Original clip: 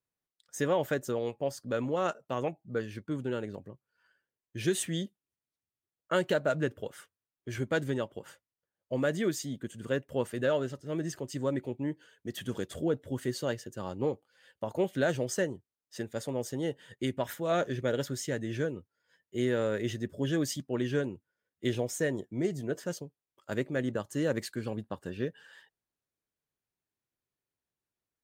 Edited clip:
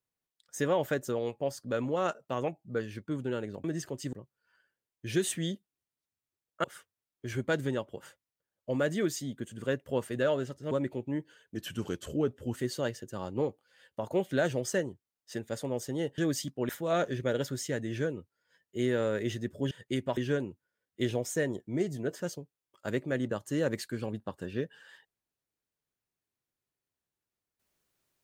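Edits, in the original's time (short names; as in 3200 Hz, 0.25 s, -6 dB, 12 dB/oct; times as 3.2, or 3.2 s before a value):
6.15–6.87 cut
10.94–11.43 move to 3.64
12.28–13.2 speed 92%
16.82–17.28 swap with 20.3–20.81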